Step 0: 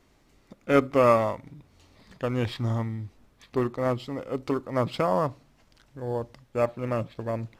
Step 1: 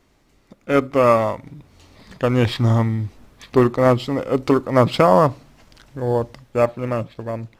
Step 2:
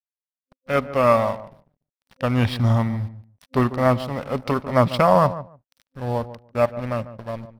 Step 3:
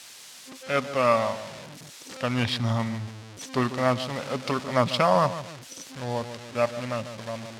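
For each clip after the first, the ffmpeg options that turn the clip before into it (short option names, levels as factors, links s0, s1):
-af "dynaudnorm=f=240:g=11:m=2.99,volume=1.33"
-filter_complex "[0:a]aeval=exprs='sgn(val(0))*max(abs(val(0))-0.015,0)':c=same,superequalizer=6b=0.355:7b=0.447:15b=0.501,asplit=2[s0][s1];[s1]adelay=146,lowpass=f=1100:p=1,volume=0.224,asplit=2[s2][s3];[s3]adelay=146,lowpass=f=1100:p=1,volume=0.16[s4];[s0][s2][s4]amix=inputs=3:normalize=0,volume=0.891"
-af "aeval=exprs='val(0)+0.5*0.0299*sgn(val(0))':c=same,crystalizer=i=4.5:c=0,highpass=110,lowpass=5000,volume=0.473"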